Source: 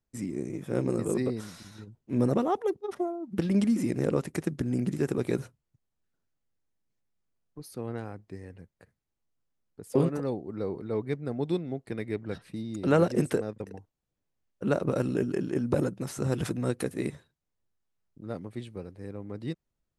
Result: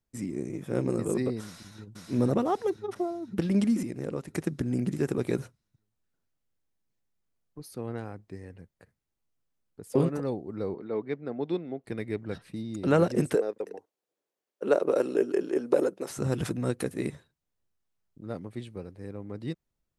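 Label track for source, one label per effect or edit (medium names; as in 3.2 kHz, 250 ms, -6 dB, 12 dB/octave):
1.450000	1.980000	echo throw 500 ms, feedback 55%, level -1.5 dB
3.830000	4.280000	gain -7 dB
10.740000	11.840000	band-pass 220–3700 Hz
13.350000	16.100000	resonant high-pass 420 Hz, resonance Q 2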